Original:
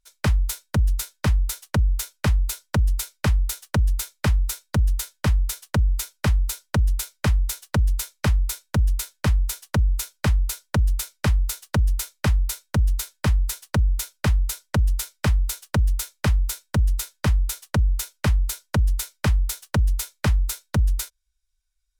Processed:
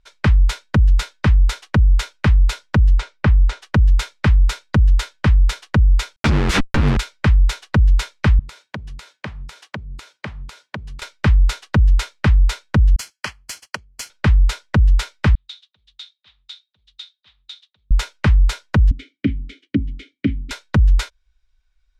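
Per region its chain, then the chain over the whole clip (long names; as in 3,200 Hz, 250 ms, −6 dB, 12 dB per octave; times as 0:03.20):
0:02.95–0:03.62: low-pass filter 8,700 Hz + high-shelf EQ 2,700 Hz −9.5 dB
0:06.16–0:06.97: high-shelf EQ 3,500 Hz +11.5 dB + comparator with hysteresis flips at −33 dBFS + string-ensemble chorus
0:08.39–0:11.02: high-pass filter 150 Hz + downward compressor, threshold −40 dBFS
0:12.96–0:14.10: first difference + leveller curve on the samples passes 1 + Butterworth band-reject 3,700 Hz, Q 5.3
0:15.35–0:17.91: volume swells 161 ms + resonant band-pass 3,700 Hz, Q 7.8
0:18.91–0:20.51: formant filter i + low shelf with overshoot 520 Hz +12.5 dB, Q 1.5
whole clip: low-pass filter 3,000 Hz 12 dB per octave; dynamic equaliser 640 Hz, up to −6 dB, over −42 dBFS, Q 1.1; boost into a limiter +19.5 dB; level −6.5 dB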